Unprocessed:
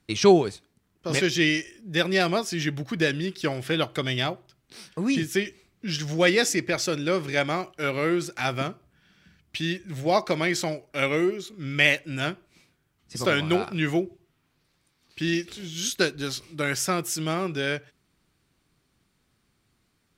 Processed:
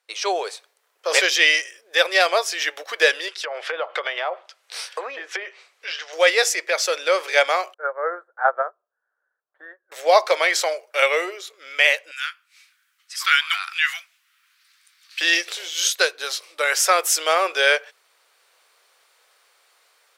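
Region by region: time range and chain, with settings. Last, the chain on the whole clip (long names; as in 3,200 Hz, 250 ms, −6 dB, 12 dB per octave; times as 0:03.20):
0:03.28–0:06.13: treble cut that deepens with the level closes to 1,200 Hz, closed at −22 dBFS + parametric band 140 Hz −15 dB 2.4 octaves + downward compressor 5 to 1, threshold −33 dBFS
0:07.74–0:09.92: elliptic low-pass filter 1,600 Hz + dynamic equaliser 350 Hz, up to −7 dB, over −39 dBFS, Q 1.8 + expander for the loud parts 2.5 to 1, over −42 dBFS
0:12.11–0:15.21: Butterworth high-pass 1,300 Hz + dynamic equaliser 7,300 Hz, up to −5 dB, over −48 dBFS, Q 1.1
whole clip: elliptic high-pass filter 490 Hz, stop band 60 dB; automatic gain control gain up to 15.5 dB; level −1 dB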